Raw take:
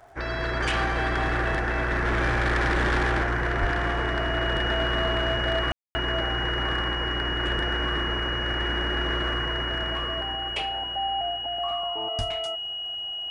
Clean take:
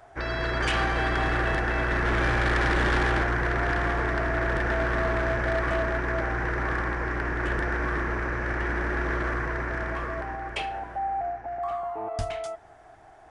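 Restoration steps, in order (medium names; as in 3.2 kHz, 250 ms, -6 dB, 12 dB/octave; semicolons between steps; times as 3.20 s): de-click; band-stop 2.9 kHz, Q 30; 3.60–3.72 s: high-pass 140 Hz 24 dB/octave; room tone fill 5.72–5.95 s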